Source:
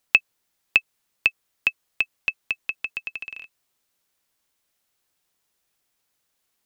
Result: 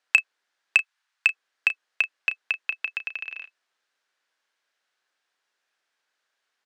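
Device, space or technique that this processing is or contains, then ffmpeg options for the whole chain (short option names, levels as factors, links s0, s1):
intercom: -filter_complex "[0:a]highpass=440,lowpass=4900,equalizer=f=1600:t=o:w=0.47:g=8,asoftclip=type=tanh:threshold=0.631,asplit=2[s0][s1];[s1]adelay=33,volume=0.251[s2];[s0][s2]amix=inputs=2:normalize=0,asplit=3[s3][s4][s5];[s3]afade=t=out:st=0.77:d=0.02[s6];[s4]highpass=f=800:w=0.5412,highpass=f=800:w=1.3066,afade=t=in:st=0.77:d=0.02,afade=t=out:st=1.28:d=0.02[s7];[s5]afade=t=in:st=1.28:d=0.02[s8];[s6][s7][s8]amix=inputs=3:normalize=0"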